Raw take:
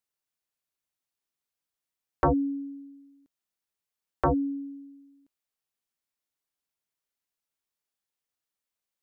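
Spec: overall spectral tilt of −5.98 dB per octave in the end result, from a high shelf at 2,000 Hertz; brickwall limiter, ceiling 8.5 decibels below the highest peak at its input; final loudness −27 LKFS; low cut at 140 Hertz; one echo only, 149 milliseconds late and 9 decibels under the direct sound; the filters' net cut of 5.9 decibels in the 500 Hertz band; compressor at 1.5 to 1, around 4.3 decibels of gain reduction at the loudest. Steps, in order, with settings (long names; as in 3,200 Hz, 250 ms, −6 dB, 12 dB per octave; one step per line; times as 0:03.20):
high-pass filter 140 Hz
parametric band 500 Hz −7 dB
high-shelf EQ 2,000 Hz −7.5 dB
downward compressor 1.5 to 1, threshold −35 dBFS
brickwall limiter −28 dBFS
single-tap delay 149 ms −9 dB
level +11.5 dB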